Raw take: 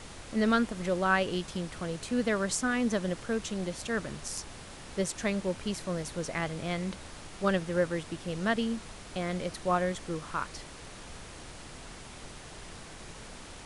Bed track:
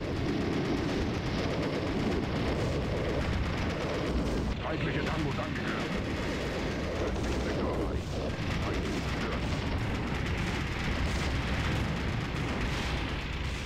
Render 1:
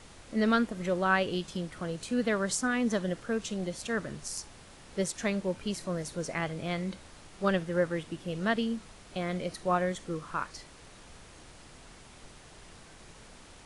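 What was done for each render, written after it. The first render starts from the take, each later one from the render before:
noise reduction from a noise print 6 dB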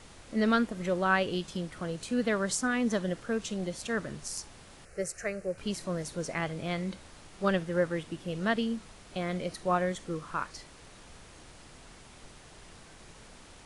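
0:04.85–0:05.58: phaser with its sweep stopped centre 940 Hz, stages 6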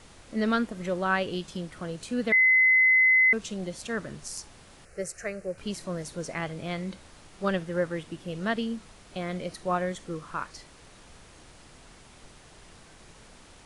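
0:02.32–0:03.33: beep over 2,040 Hz −16.5 dBFS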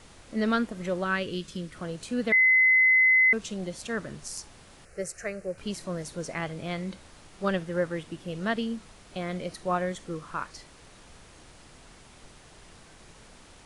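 0:01.04–0:01.75: parametric band 790 Hz −12.5 dB 0.62 octaves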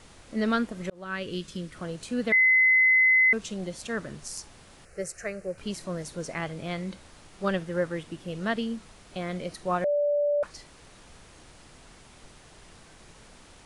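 0:00.90–0:01.35: fade in
0:09.84–0:10.43: beep over 583 Hz −21.5 dBFS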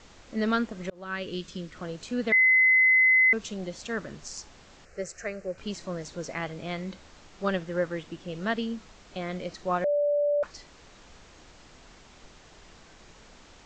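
Butterworth low-pass 7,600 Hz 72 dB per octave
parametric band 120 Hz −4.5 dB 0.87 octaves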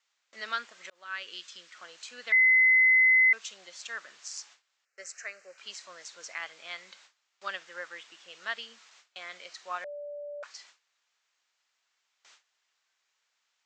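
noise gate with hold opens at −39 dBFS
high-pass filter 1,400 Hz 12 dB per octave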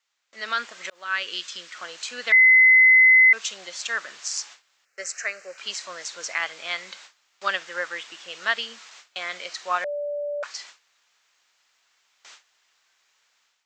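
brickwall limiter −21.5 dBFS, peak gain reduction 4 dB
automatic gain control gain up to 11 dB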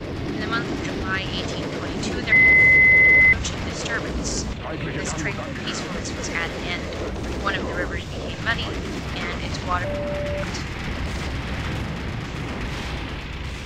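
mix in bed track +3 dB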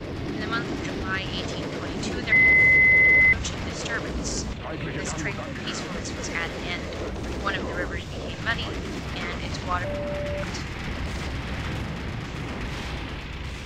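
level −3 dB

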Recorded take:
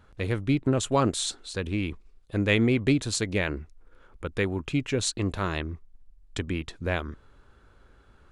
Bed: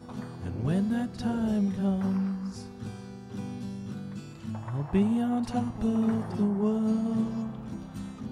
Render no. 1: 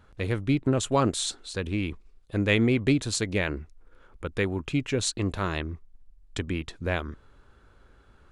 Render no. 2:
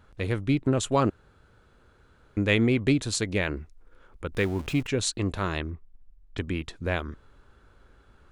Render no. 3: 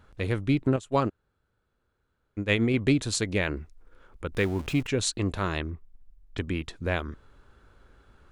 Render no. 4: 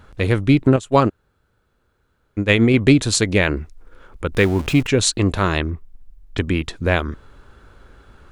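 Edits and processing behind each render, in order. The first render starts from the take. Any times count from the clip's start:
no processing that can be heard
0:01.10–0:02.37: fill with room tone; 0:04.32–0:04.87: converter with a step at zero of −37.5 dBFS; 0:05.70–0:06.38: high-frequency loss of the air 270 metres
0:00.76–0:02.74: expander for the loud parts 2.5 to 1, over −31 dBFS
level +10 dB; brickwall limiter −2 dBFS, peak gain reduction 2.5 dB

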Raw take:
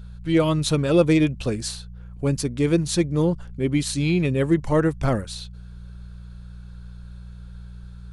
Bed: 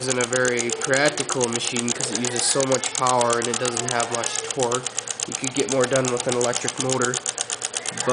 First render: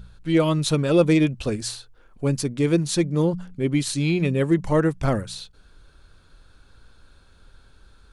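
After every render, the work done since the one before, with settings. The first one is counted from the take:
hum removal 60 Hz, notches 3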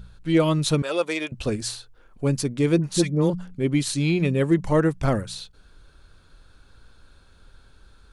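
0:00.82–0:01.32: high-pass filter 650 Hz
0:02.78–0:03.30: all-pass dispersion highs, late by 58 ms, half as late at 1,100 Hz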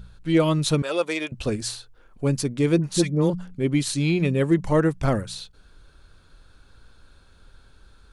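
no processing that can be heard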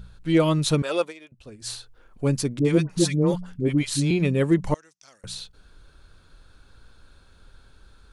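0:01.01–0:01.72: duck −18 dB, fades 0.12 s
0:02.59–0:04.11: all-pass dispersion highs, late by 58 ms, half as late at 610 Hz
0:04.74–0:05.24: resonant band-pass 5,800 Hz, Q 4.5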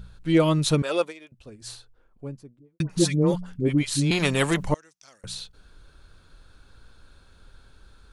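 0:01.12–0:02.80: fade out and dull
0:04.11–0:04.64: every bin compressed towards the loudest bin 2 to 1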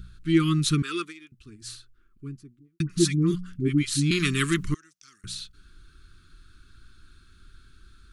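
elliptic band-stop filter 370–1,200 Hz, stop band 40 dB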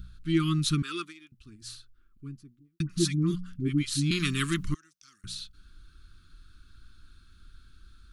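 octave-band graphic EQ 125/500/2,000/8,000 Hz −3/−12/−5/−5 dB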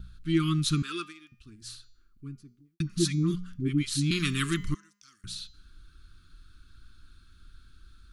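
hum removal 203.4 Hz, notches 37
noise gate with hold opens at −55 dBFS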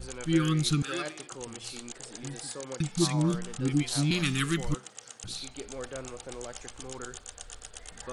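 mix in bed −19 dB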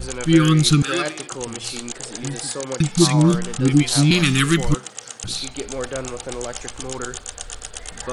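level +11.5 dB
brickwall limiter −3 dBFS, peak gain reduction 1.5 dB

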